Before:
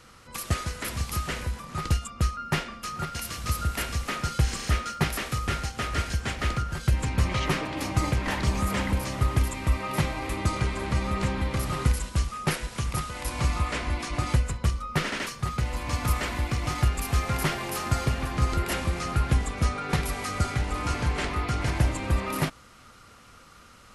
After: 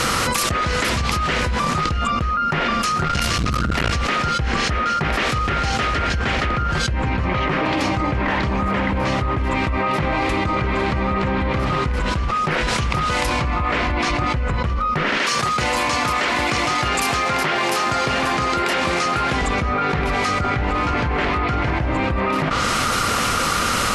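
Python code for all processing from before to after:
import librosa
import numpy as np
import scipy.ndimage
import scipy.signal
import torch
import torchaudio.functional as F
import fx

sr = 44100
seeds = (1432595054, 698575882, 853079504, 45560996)

y = fx.chain(x, sr, fx.low_shelf(hz=82.0, db=11.5),
    fx.over_compress(threshold_db=-21.0, ratio=-0.5),
    fx.transformer_sat(knee_hz=350.0), at=(2.99, 3.91))
y = fx.chain(y, sr, fx.highpass(hz=130.0, slope=6),
    fx.low_shelf(hz=180.0, db=-9.5), at=(15.18, 19.42))
y = fx.env_lowpass_down(y, sr, base_hz=2200.0, full_db=-22.5)
y = fx.low_shelf(y, sr, hz=140.0, db=-7.0)
y = fx.env_flatten(y, sr, amount_pct=100)
y = y * 10.0 ** (2.0 / 20.0)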